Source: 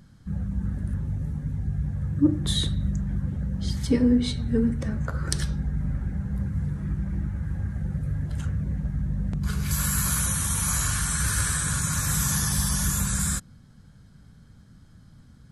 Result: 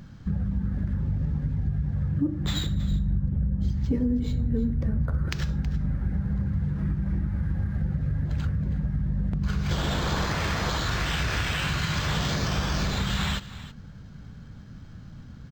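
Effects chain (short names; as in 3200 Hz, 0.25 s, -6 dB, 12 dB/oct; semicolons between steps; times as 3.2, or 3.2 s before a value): 2.91–5.29 tilt -2.5 dB/oct; compressor 6:1, threshold -31 dBFS, peak gain reduction 19 dB; echo 0.322 s -15.5 dB; decimation joined by straight lines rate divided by 4×; gain +7.5 dB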